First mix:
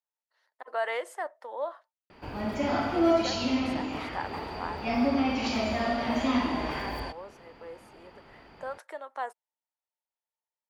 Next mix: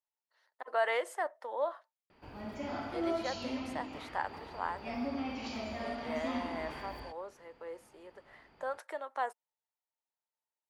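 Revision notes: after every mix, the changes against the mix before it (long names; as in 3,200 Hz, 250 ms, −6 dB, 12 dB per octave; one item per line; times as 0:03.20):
background −11.0 dB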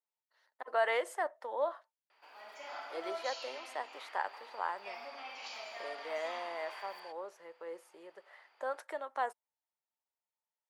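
background: add Bessel high-pass filter 900 Hz, order 4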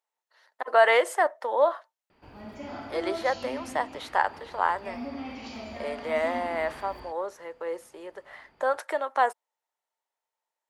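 speech +11.5 dB
background: remove Bessel high-pass filter 900 Hz, order 4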